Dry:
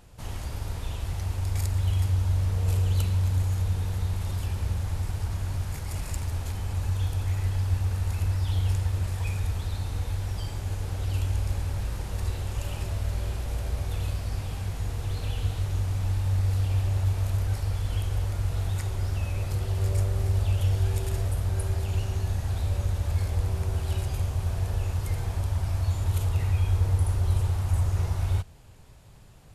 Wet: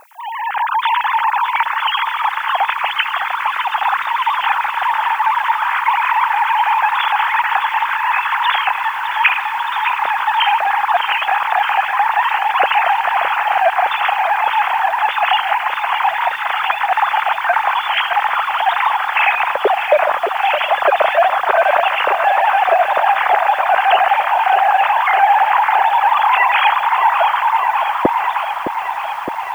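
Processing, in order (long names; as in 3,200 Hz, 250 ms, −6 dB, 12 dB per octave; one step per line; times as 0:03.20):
three sine waves on the formant tracks
low-pass filter 1,700 Hz 12 dB per octave
automatic gain control gain up to 14.5 dB
background noise violet −53 dBFS
feedback echo at a low word length 613 ms, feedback 80%, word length 7 bits, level −9 dB
level −1 dB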